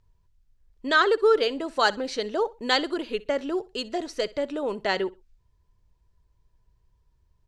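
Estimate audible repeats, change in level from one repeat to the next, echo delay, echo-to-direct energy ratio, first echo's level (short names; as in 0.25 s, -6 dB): 2, -11.5 dB, 63 ms, -20.5 dB, -21.0 dB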